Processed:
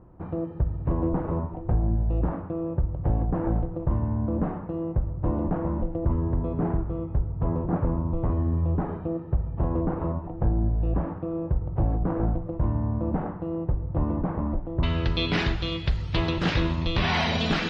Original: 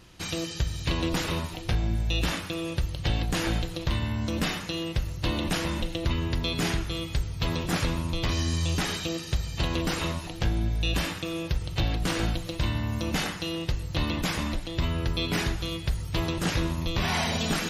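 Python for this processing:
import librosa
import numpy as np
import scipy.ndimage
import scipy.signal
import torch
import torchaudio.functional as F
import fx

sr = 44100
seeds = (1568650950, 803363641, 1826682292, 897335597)

y = fx.lowpass(x, sr, hz=fx.steps((0.0, 1000.0), (14.83, 4300.0)), slope=24)
y = y * 10.0 ** (3.0 / 20.0)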